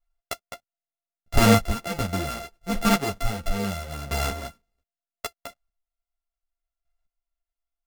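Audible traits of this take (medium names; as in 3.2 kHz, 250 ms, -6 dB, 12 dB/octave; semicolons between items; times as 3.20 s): a buzz of ramps at a fixed pitch in blocks of 64 samples; chopped level 0.73 Hz, depth 65%, duty 15%; a shimmering, thickened sound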